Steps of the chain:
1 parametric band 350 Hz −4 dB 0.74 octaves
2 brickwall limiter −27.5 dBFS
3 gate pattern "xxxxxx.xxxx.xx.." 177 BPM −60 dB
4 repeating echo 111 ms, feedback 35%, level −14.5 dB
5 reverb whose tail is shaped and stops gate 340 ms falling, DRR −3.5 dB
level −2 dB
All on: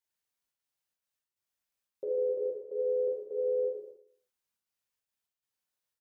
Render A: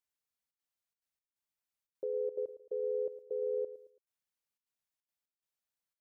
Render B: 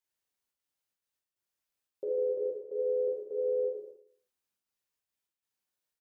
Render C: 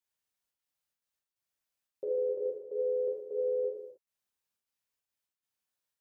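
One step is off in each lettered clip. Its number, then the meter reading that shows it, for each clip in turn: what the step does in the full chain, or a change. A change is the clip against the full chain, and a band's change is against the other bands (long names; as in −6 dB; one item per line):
5, change in integrated loudness −5.0 LU
1, change in momentary loudness spread +5 LU
4, change in momentary loudness spread +5 LU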